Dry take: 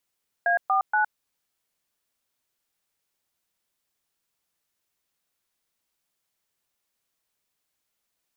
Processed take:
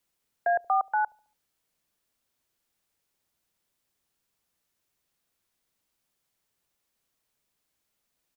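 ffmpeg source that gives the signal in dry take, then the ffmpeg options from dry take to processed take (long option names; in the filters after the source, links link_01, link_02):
-f lavfi -i "aevalsrc='0.0841*clip(min(mod(t,0.237),0.113-mod(t,0.237))/0.002,0,1)*(eq(floor(t/0.237),0)*(sin(2*PI*697*mod(t,0.237))+sin(2*PI*1633*mod(t,0.237)))+eq(floor(t/0.237),1)*(sin(2*PI*770*mod(t,0.237))+sin(2*PI*1209*mod(t,0.237)))+eq(floor(t/0.237),2)*(sin(2*PI*852*mod(t,0.237))+sin(2*PI*1477*mod(t,0.237))))':duration=0.711:sample_rate=44100"
-filter_complex "[0:a]lowshelf=frequency=460:gain=5,acrossover=split=620|740|900[link_01][link_02][link_03][link_04];[link_01]aecho=1:1:71|142|213|284:0.158|0.0666|0.028|0.0117[link_05];[link_04]alimiter=level_in=8.5dB:limit=-24dB:level=0:latency=1:release=52,volume=-8.5dB[link_06];[link_05][link_02][link_03][link_06]amix=inputs=4:normalize=0"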